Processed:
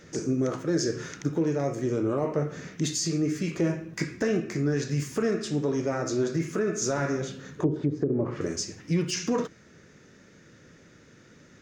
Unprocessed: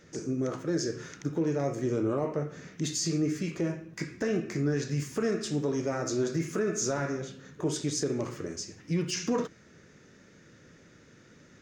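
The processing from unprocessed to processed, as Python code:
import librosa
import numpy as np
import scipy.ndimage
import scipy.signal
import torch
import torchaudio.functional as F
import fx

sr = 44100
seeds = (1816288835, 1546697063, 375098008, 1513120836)

y = fx.high_shelf(x, sr, hz=6300.0, db=-6.0, at=(5.22, 6.82))
y = fx.env_lowpass_down(y, sr, base_hz=370.0, full_db=-25.0, at=(7.55, 8.41))
y = fx.rider(y, sr, range_db=3, speed_s=0.5)
y = y * 10.0 ** (3.5 / 20.0)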